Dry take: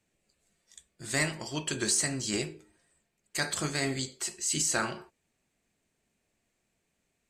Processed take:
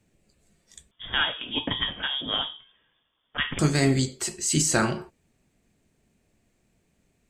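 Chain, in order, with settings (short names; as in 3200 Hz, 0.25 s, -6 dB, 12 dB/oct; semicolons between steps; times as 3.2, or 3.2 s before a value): 0.91–3.59 inverted band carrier 3500 Hz; low shelf 420 Hz +10.5 dB; gain +4 dB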